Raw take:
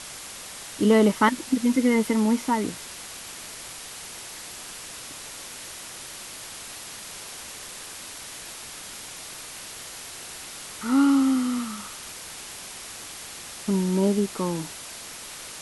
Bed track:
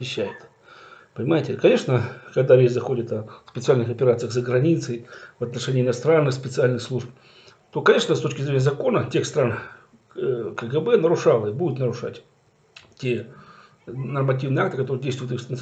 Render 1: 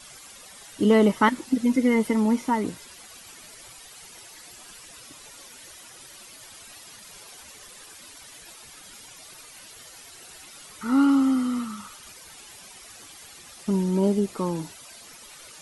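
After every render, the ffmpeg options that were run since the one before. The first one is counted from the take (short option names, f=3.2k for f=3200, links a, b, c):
-af "afftdn=nr=12:nf=-40"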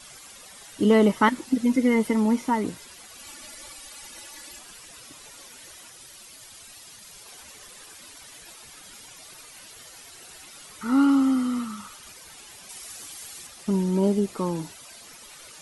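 -filter_complex "[0:a]asettb=1/sr,asplit=3[a][b][c];[a]atrim=end=3.194[d];[b]atrim=start=3.19:end=4.59,asetpts=PTS-STARTPTS,afade=t=in:d=0.004:c=qsin,afade=t=out:st=1.396:d=0.004:c=qsin,aecho=1:1:3.5:0.98,atrim=end_sample=61740[e];[c]atrim=start=4.586[f];[d][e]acrossfade=d=0.004:c1=hsin:c2=qsin[g];[g][f]acrossfade=d=0.004:c1=qsin:c2=hsin,asettb=1/sr,asplit=3[h][i][j];[h]atrim=end=5.904[k];[i]atrim=start=5.9:end=7.26,asetpts=PTS-STARTPTS,afade=t=in:d=0.004:c=qsin,afade=t=out:st=1.356:d=0.004:c=qsin,acrossover=split=150|3000[l][m][n];[m]acompressor=threshold=-52dB:ratio=6:attack=3.2:release=140:knee=2.83:detection=peak[o];[l][o][n]amix=inputs=3:normalize=0[p];[j]atrim=start=7.256[q];[k][p]acrossfade=d=0.004:c1=hsin:c2=qsin[r];[r][q]acrossfade=d=0.004:c1=qsin:c2=hsin,asettb=1/sr,asplit=3[s][t][u];[s]atrim=end=12.694[v];[t]atrim=start=12.69:end=13.47,asetpts=PTS-STARTPTS,afade=t=in:d=0.004:c=qsin,afade=t=out:st=0.776:d=0.004:c=qsin,highshelf=f=4.9k:g=8.5[w];[u]atrim=start=13.466[x];[v][w]acrossfade=d=0.004:c1=hsin:c2=qsin[y];[y][x]acrossfade=d=0.004:c1=qsin:c2=hsin"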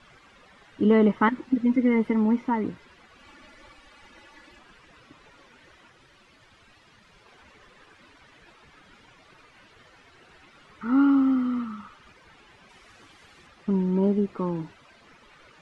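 -af "lowpass=2k,equalizer=f=700:w=1.6:g=-4.5"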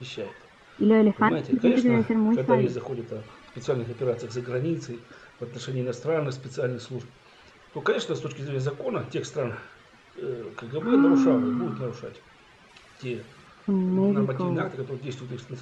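-filter_complex "[1:a]volume=-8.5dB[a];[0:a][a]amix=inputs=2:normalize=0"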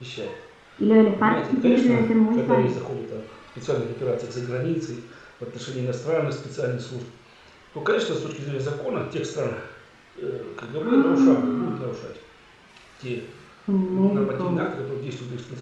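-filter_complex "[0:a]asplit=2[a][b];[b]adelay=41,volume=-4.5dB[c];[a][c]amix=inputs=2:normalize=0,aecho=1:1:63|126|189|252|315|378:0.398|0.203|0.104|0.0528|0.0269|0.0137"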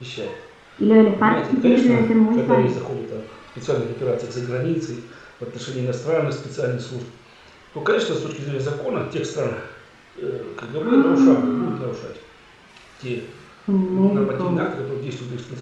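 -af "volume=3dB"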